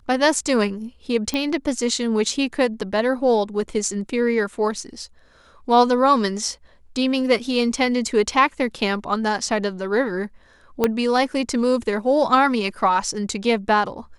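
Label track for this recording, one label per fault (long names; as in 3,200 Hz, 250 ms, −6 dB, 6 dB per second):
1.340000	1.340000	click −11 dBFS
10.840000	10.840000	click −5 dBFS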